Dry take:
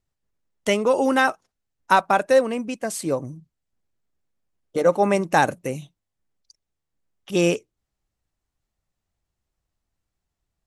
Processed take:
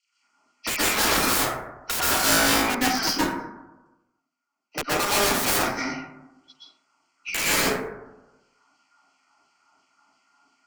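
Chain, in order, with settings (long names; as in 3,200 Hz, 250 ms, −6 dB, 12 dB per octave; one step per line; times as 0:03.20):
hearing-aid frequency compression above 1,700 Hz 1.5 to 1
dynamic equaliser 520 Hz, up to +5 dB, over −29 dBFS, Q 2.4
0:03.09–0:04.88: output level in coarse steps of 18 dB
auto-filter high-pass saw down 2.9 Hz 450–3,600 Hz
phaser with its sweep stopped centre 2,500 Hz, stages 8
hollow resonant body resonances 250/1,400 Hz, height 17 dB, ringing for 55 ms
wrap-around overflow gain 24.5 dB
0:02.05–0:02.50: flutter between parallel walls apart 3.1 metres, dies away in 0.62 s
convolution reverb RT60 0.80 s, pre-delay 112 ms, DRR −10 dB
tube saturation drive 14 dB, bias 0.75
multiband upward and downward compressor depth 40%
level +5 dB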